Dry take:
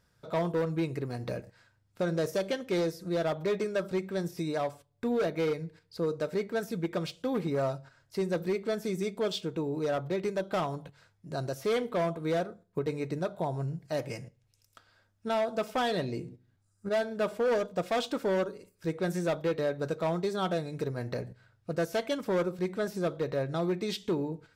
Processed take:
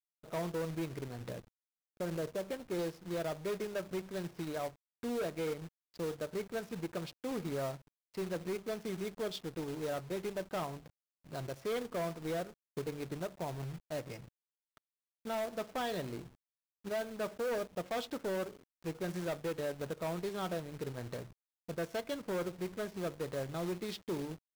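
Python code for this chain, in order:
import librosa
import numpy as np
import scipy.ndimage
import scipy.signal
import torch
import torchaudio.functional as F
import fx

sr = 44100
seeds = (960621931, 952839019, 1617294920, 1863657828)

y = fx.lowpass(x, sr, hz=1500.0, slope=6, at=(1.29, 2.79))
y = fx.backlash(y, sr, play_db=-41.5)
y = fx.quant_companded(y, sr, bits=4)
y = F.gain(torch.from_numpy(y), -7.5).numpy()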